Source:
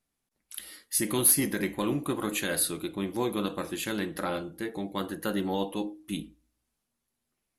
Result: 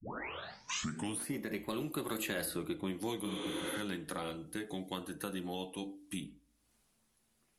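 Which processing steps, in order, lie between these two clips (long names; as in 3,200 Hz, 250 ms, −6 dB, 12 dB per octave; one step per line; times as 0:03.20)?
turntable start at the beginning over 1.45 s
source passing by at 0:02.63, 20 m/s, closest 7.1 metres
healed spectral selection 0:03.28–0:03.76, 220–10,000 Hz both
multiband upward and downward compressor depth 100%
level −1 dB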